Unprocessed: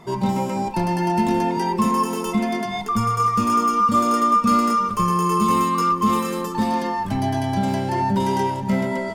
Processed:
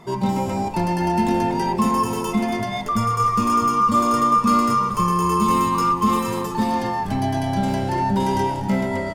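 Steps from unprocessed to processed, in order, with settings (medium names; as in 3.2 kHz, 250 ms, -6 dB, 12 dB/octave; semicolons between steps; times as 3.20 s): frequency-shifting echo 242 ms, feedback 41%, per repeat -100 Hz, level -13.5 dB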